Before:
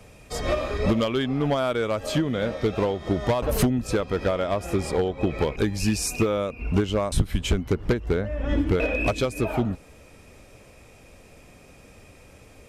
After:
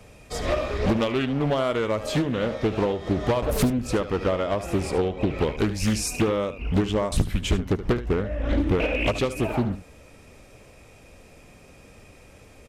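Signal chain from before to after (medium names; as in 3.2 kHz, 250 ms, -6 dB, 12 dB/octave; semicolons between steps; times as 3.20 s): delay 74 ms -13 dB; loudspeaker Doppler distortion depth 0.68 ms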